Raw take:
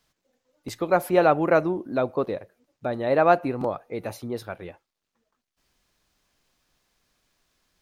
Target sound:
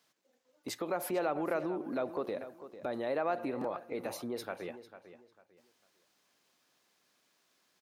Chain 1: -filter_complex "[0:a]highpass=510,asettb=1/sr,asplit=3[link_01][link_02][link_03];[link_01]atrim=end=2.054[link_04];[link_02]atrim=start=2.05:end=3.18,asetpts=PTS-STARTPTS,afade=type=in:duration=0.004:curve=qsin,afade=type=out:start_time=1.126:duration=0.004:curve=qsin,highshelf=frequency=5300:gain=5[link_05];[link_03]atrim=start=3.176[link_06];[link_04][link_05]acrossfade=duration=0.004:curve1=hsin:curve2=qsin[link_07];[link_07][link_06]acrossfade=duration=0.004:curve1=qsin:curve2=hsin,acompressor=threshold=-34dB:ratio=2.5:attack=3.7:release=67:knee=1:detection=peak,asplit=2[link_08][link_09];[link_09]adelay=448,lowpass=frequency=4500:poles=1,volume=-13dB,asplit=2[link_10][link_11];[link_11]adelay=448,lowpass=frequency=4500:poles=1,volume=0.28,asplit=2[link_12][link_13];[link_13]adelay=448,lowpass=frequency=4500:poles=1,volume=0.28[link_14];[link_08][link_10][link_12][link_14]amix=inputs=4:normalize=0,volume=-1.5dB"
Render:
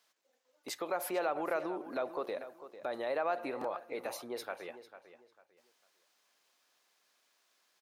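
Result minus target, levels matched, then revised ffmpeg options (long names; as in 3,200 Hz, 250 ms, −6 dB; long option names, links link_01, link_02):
250 Hz band −4.5 dB
-filter_complex "[0:a]highpass=230,asettb=1/sr,asplit=3[link_01][link_02][link_03];[link_01]atrim=end=2.054[link_04];[link_02]atrim=start=2.05:end=3.18,asetpts=PTS-STARTPTS,afade=type=in:duration=0.004:curve=qsin,afade=type=out:start_time=1.126:duration=0.004:curve=qsin,highshelf=frequency=5300:gain=5[link_05];[link_03]atrim=start=3.176[link_06];[link_04][link_05]acrossfade=duration=0.004:curve1=hsin:curve2=qsin[link_07];[link_07][link_06]acrossfade=duration=0.004:curve1=qsin:curve2=hsin,acompressor=threshold=-34dB:ratio=2.5:attack=3.7:release=67:knee=1:detection=peak,asplit=2[link_08][link_09];[link_09]adelay=448,lowpass=frequency=4500:poles=1,volume=-13dB,asplit=2[link_10][link_11];[link_11]adelay=448,lowpass=frequency=4500:poles=1,volume=0.28,asplit=2[link_12][link_13];[link_13]adelay=448,lowpass=frequency=4500:poles=1,volume=0.28[link_14];[link_08][link_10][link_12][link_14]amix=inputs=4:normalize=0,volume=-1.5dB"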